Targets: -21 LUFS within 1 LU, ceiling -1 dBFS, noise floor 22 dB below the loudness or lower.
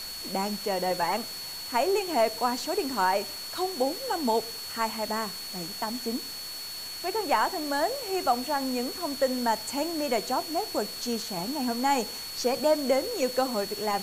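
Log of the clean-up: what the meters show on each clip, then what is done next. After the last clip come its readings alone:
steady tone 4400 Hz; tone level -37 dBFS; noise floor -38 dBFS; noise floor target -51 dBFS; loudness -28.5 LUFS; peak -12.0 dBFS; loudness target -21.0 LUFS
-> notch 4400 Hz, Q 30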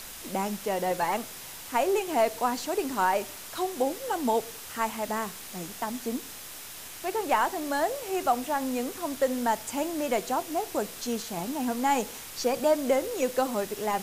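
steady tone none; noise floor -43 dBFS; noise floor target -51 dBFS
-> denoiser 8 dB, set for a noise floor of -43 dBFS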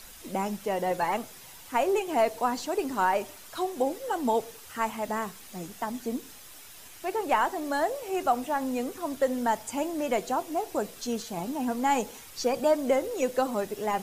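noise floor -48 dBFS; noise floor target -52 dBFS
-> denoiser 6 dB, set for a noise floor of -48 dBFS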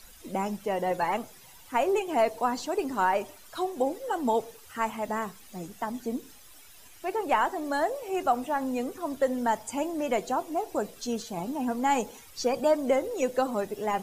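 noise floor -51 dBFS; noise floor target -52 dBFS
-> denoiser 6 dB, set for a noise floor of -51 dBFS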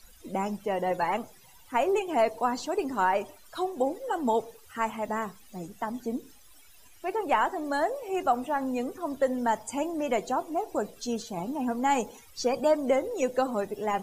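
noise floor -54 dBFS; loudness -29.5 LUFS; peak -12.0 dBFS; loudness target -21.0 LUFS
-> gain +8.5 dB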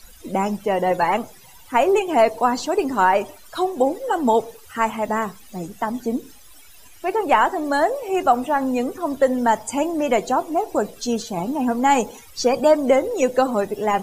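loudness -21.0 LUFS; peak -3.5 dBFS; noise floor -45 dBFS

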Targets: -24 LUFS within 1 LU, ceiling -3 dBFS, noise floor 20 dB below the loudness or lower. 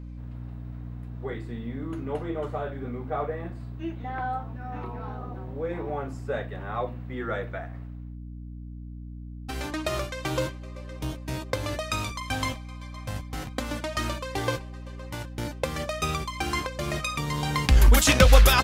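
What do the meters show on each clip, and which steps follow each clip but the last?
hum 60 Hz; harmonics up to 300 Hz; hum level -36 dBFS; loudness -28.5 LUFS; peak -3.5 dBFS; loudness target -24.0 LUFS
-> de-hum 60 Hz, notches 5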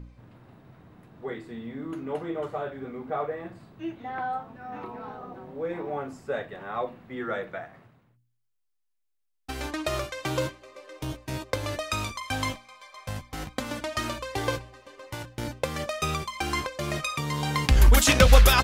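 hum none; loudness -28.5 LUFS; peak -3.5 dBFS; loudness target -24.0 LUFS
-> gain +4.5 dB; limiter -3 dBFS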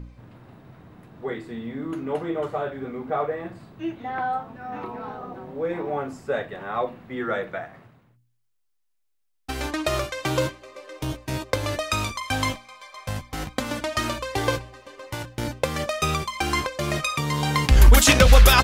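loudness -24.5 LUFS; peak -3.0 dBFS; noise floor -70 dBFS

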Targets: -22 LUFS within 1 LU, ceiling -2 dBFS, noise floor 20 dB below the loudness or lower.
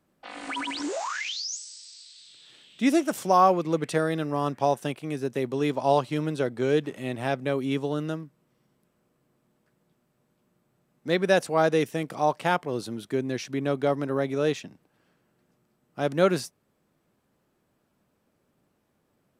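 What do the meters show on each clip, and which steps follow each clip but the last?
loudness -26.5 LUFS; peak -7.5 dBFS; loudness target -22.0 LUFS
-> gain +4.5 dB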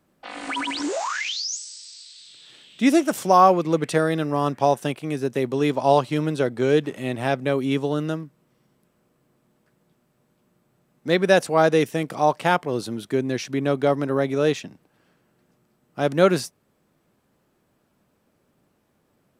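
loudness -22.0 LUFS; peak -3.0 dBFS; noise floor -68 dBFS

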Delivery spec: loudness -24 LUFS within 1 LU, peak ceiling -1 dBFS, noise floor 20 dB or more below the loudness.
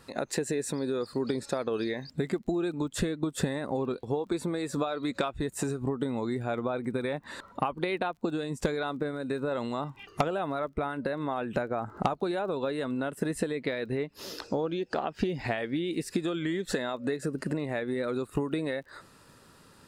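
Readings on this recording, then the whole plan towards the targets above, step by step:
ticks 23/s; loudness -32.0 LUFS; peak -15.5 dBFS; loudness target -24.0 LUFS
-> de-click; gain +8 dB

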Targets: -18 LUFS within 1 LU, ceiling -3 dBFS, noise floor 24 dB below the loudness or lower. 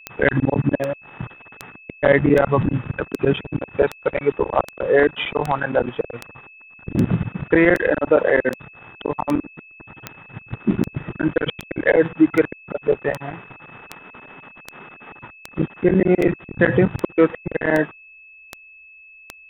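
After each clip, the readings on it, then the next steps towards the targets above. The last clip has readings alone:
clicks 26; steady tone 2600 Hz; tone level -43 dBFS; loudness -20.0 LUFS; peak -1.5 dBFS; loudness target -18.0 LUFS
-> de-click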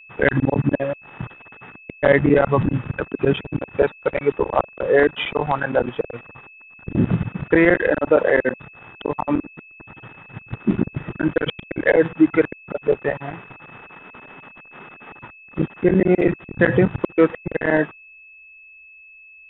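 clicks 0; steady tone 2600 Hz; tone level -43 dBFS
-> notch 2600 Hz, Q 30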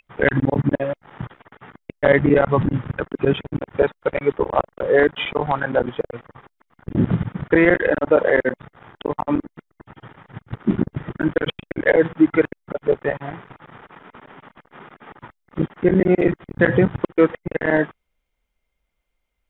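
steady tone none; loudness -20.0 LUFS; peak -1.5 dBFS; loudness target -18.0 LUFS
-> gain +2 dB; limiter -3 dBFS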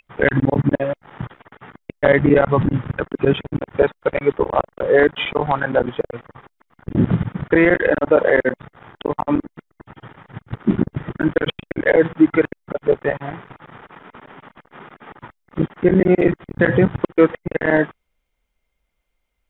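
loudness -18.5 LUFS; peak -3.0 dBFS; noise floor -72 dBFS

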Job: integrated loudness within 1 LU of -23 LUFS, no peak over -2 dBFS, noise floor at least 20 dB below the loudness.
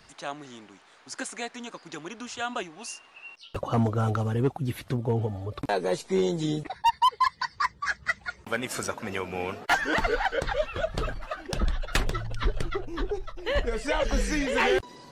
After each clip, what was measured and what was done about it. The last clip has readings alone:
clipped 0.5%; flat tops at -16.5 dBFS; loudness -29.0 LUFS; peak -16.5 dBFS; loudness target -23.0 LUFS
-> clip repair -16.5 dBFS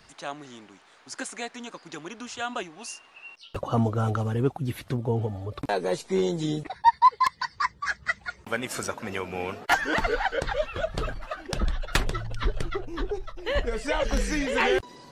clipped 0.0%; loudness -28.0 LUFS; peak -7.5 dBFS; loudness target -23.0 LUFS
-> gain +5 dB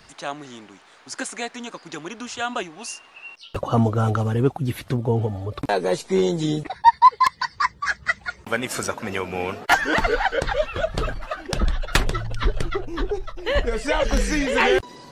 loudness -23.0 LUFS; peak -2.5 dBFS; noise floor -51 dBFS

